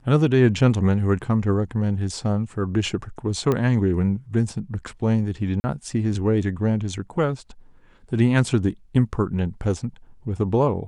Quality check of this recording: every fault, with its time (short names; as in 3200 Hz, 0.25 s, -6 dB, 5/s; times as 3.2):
3.52 pop -11 dBFS
5.6–5.64 gap 40 ms